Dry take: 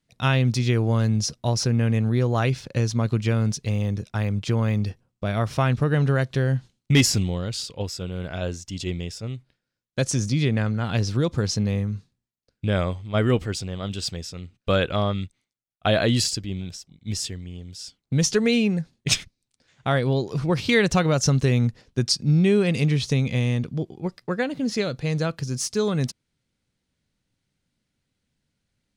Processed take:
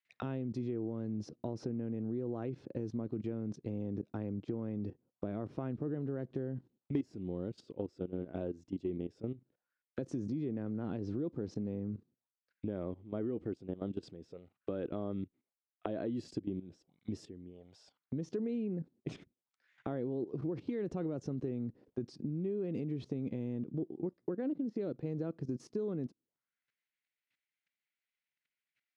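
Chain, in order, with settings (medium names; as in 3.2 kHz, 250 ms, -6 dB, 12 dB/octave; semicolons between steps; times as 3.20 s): level held to a coarse grid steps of 15 dB; auto-wah 320–2200 Hz, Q 2.5, down, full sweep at -37 dBFS; compression, threshold -40 dBFS, peak gain reduction 18.5 dB; trim +7 dB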